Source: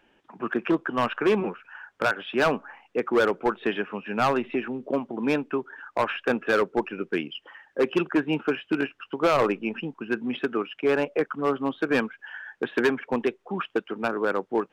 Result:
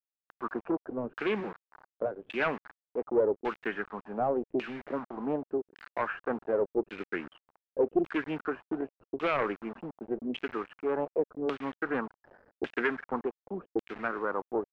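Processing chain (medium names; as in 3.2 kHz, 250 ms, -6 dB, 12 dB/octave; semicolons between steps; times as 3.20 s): word length cut 6-bit, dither none; LFO low-pass saw down 0.87 Hz 350–2900 Hz; loudspeaker Doppler distortion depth 0.25 ms; trim -9 dB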